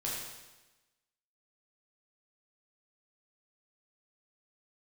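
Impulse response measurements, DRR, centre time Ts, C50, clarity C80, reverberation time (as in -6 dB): -5.5 dB, 75 ms, 0.0 dB, 2.0 dB, 1.1 s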